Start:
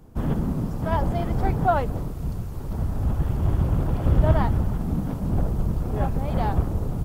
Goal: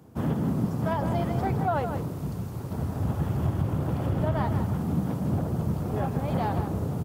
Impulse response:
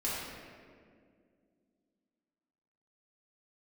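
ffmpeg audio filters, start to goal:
-filter_complex "[0:a]highpass=f=89:w=0.5412,highpass=f=89:w=1.3066,alimiter=limit=-17.5dB:level=0:latency=1:release=152,asplit=2[a][b];[b]aecho=0:1:160:0.376[c];[a][c]amix=inputs=2:normalize=0"

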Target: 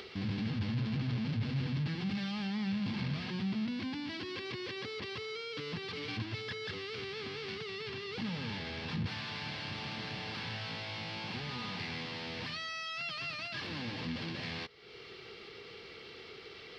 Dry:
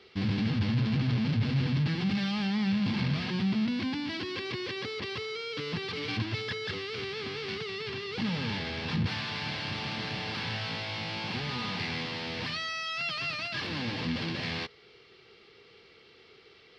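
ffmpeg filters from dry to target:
-af "acompressor=mode=upward:threshold=-30dB:ratio=2.5,volume=-6.5dB"

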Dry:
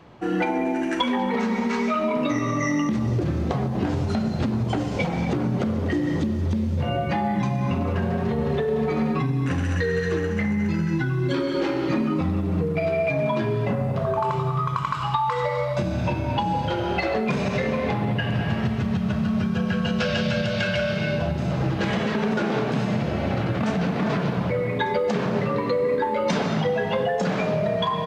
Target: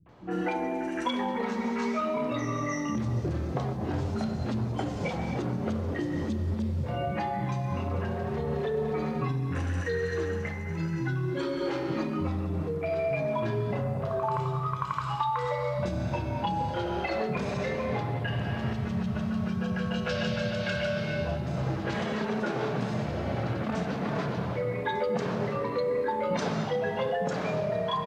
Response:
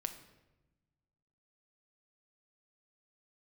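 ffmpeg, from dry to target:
-filter_complex "[0:a]asettb=1/sr,asplit=3[a][b][c];[a]atrim=end=6.354[d];[b]atrim=start=6.35:end=6.97,asetpts=PTS-STARTPTS,afade=t=in:d=0.004:c=qsin,afade=t=out:st=0.616:d=0.004:c=qsin,bandreject=f=6.2k:w=12[e];[c]atrim=start=6.966[f];[d][e]acrossfade=d=0.004:c1=hsin:c2=qsin[g];[g][f]acrossfade=d=0.004:c1=qsin:c2=hsin,acrossover=split=220|2700[h][i][j];[i]adelay=60[k];[j]adelay=90[l];[h][k][l]amix=inputs=3:normalize=0,volume=-5dB"

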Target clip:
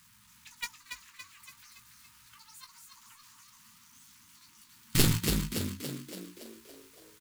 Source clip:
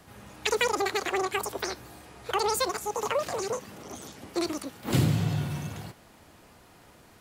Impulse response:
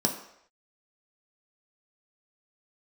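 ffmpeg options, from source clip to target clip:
-filter_complex "[0:a]aeval=exprs='val(0)+0.5*0.0562*sgn(val(0))':c=same,afftfilt=real='re*(1-between(b*sr/4096,250,870))':imag='im*(1-between(b*sr/4096,250,870))':win_size=4096:overlap=0.75,agate=range=-39dB:threshold=-19dB:ratio=16:detection=peak,aeval=exprs='0.335*(cos(1*acos(clip(val(0)/0.335,-1,1)))-cos(1*PI/2))+0.133*(cos(3*acos(clip(val(0)/0.335,-1,1)))-cos(3*PI/2))+0.0841*(cos(6*acos(clip(val(0)/0.335,-1,1)))-cos(6*PI/2))+0.0596*(cos(7*acos(clip(val(0)/0.335,-1,1)))-cos(7*PI/2))':c=same,highshelf=f=2.4k:g=10.5,asplit=2[a][b];[b]adelay=18,volume=-7dB[c];[a][c]amix=inputs=2:normalize=0,asplit=8[d][e][f][g][h][i][j][k];[e]adelay=283,afreqshift=45,volume=-5.5dB[l];[f]adelay=566,afreqshift=90,volume=-10.5dB[m];[g]adelay=849,afreqshift=135,volume=-15.6dB[n];[h]adelay=1132,afreqshift=180,volume=-20.6dB[o];[i]adelay=1415,afreqshift=225,volume=-25.6dB[p];[j]adelay=1698,afreqshift=270,volume=-30.7dB[q];[k]adelay=1981,afreqshift=315,volume=-35.7dB[r];[d][l][m][n][o][p][q][r]amix=inputs=8:normalize=0"

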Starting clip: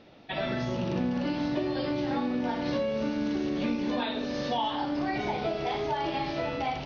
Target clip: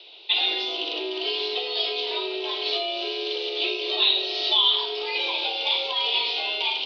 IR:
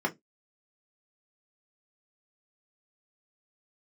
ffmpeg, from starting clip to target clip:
-filter_complex "[0:a]aexciter=amount=14.9:drive=7.8:freq=2.6k,asplit=2[a][b];[1:a]atrim=start_sample=2205[c];[b][c]afir=irnorm=-1:irlink=0,volume=-21.5dB[d];[a][d]amix=inputs=2:normalize=0,highpass=f=230:t=q:w=0.5412,highpass=f=230:t=q:w=1.307,lowpass=f=3.6k:t=q:w=0.5176,lowpass=f=3.6k:t=q:w=0.7071,lowpass=f=3.6k:t=q:w=1.932,afreqshift=130,volume=-2.5dB"

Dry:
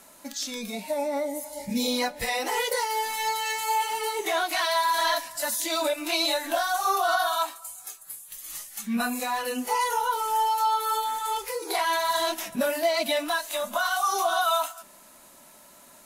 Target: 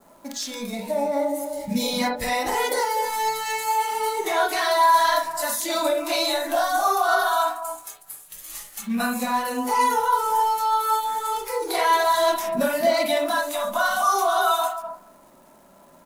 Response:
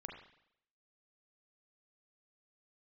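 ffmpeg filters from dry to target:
-filter_complex "[0:a]adynamicequalizer=threshold=0.00501:dfrequency=2800:dqfactor=2:tfrequency=2800:tqfactor=2:attack=5:release=100:ratio=0.375:range=3:mode=cutabove:tftype=bell,acrossover=split=1300[a][b];[a]aecho=1:1:254:0.447[c];[b]aeval=exprs='sgn(val(0))*max(abs(val(0))-0.00251,0)':c=same[d];[c][d]amix=inputs=2:normalize=0[e];[1:a]atrim=start_sample=2205,afade=t=out:st=0.13:d=0.01,atrim=end_sample=6174[f];[e][f]afir=irnorm=-1:irlink=0,volume=8dB"

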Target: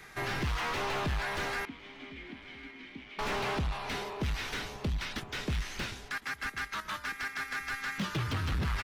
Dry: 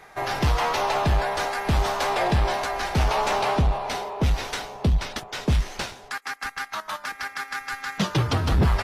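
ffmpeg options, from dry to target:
-filter_complex "[0:a]acrossover=split=430|1200[a][b][c];[a]acompressor=threshold=-30dB:ratio=6[d];[b]aderivative[e];[c]asoftclip=type=hard:threshold=-31dB[f];[d][e][f]amix=inputs=3:normalize=0,acrossover=split=3300[g][h];[h]acompressor=threshold=-46dB:ratio=4:attack=1:release=60[i];[g][i]amix=inputs=2:normalize=0,asoftclip=type=tanh:threshold=-28dB,asettb=1/sr,asplit=3[j][k][l];[j]atrim=end=1.654[m];[k]atrim=start=1.65:end=3.19,asetpts=PTS-STARTPTS,afade=t=in:d=0.004:c=qsin,afade=t=out:st=1.536:d=0.004:c=qsin,asplit=3[n][o][p];[n]bandpass=f=270:t=q:w=8,volume=0dB[q];[o]bandpass=f=2.29k:t=q:w=8,volume=-6dB[r];[p]bandpass=f=3.01k:t=q:w=8,volume=-9dB[s];[q][r][s]amix=inputs=3:normalize=0[t];[l]atrim=start=3.186[u];[m][t]acrossfade=d=0.004:c1=hsin:c2=qsin[v];[v][u]acrossfade=d=0.004:c1=qsin:c2=hsin,asplit=2[w][x];[x]adelay=1056,lowpass=f=3.2k:p=1,volume=-21dB,asplit=2[y][z];[z]adelay=1056,lowpass=f=3.2k:p=1,volume=0.53,asplit=2[aa][ab];[ab]adelay=1056,lowpass=f=3.2k:p=1,volume=0.53,asplit=2[ac][ad];[ad]adelay=1056,lowpass=f=3.2k:p=1,volume=0.53[ae];[y][aa][ac][ae]amix=inputs=4:normalize=0[af];[w][af]amix=inputs=2:normalize=0,volume=1.5dB"

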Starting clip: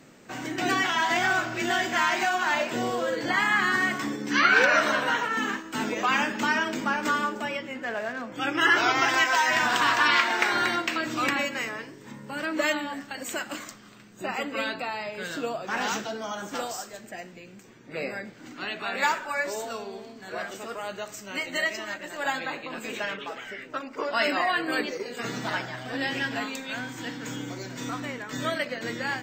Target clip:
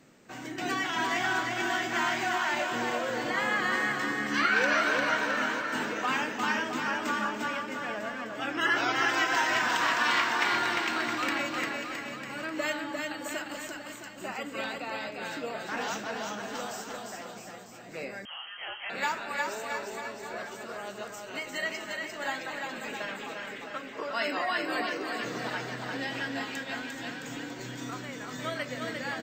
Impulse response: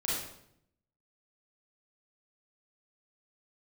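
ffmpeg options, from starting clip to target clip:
-filter_complex "[0:a]aecho=1:1:350|665|948.5|1204|1433:0.631|0.398|0.251|0.158|0.1,asettb=1/sr,asplit=3[a][b][c];[a]atrim=end=18.254[d];[b]atrim=start=18.25:end=18.9,asetpts=PTS-STARTPTS,afade=t=in:d=0.004:c=qsin,afade=t=out:st=0.646:d=0.004:c=qsin,lowpass=f=2.9k:t=q:w=0.5098,lowpass=f=2.9k:t=q:w=0.6013,lowpass=f=2.9k:t=q:w=0.9,lowpass=f=2.9k:t=q:w=2.563,afreqshift=-3400[e];[c]atrim=start=18.896[f];[d][e]acrossfade=d=0.004:c1=hsin:c2=qsin[g];[g][f]acrossfade=d=0.004:c1=qsin:c2=hsin,volume=-6dB"

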